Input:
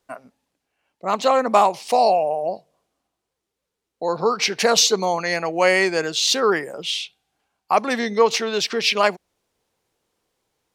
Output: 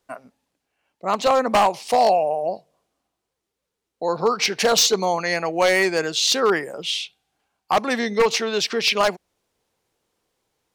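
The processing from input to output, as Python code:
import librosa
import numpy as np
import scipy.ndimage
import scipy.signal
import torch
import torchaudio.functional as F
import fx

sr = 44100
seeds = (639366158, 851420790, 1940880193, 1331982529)

y = 10.0 ** (-9.5 / 20.0) * (np.abs((x / 10.0 ** (-9.5 / 20.0) + 3.0) % 4.0 - 2.0) - 1.0)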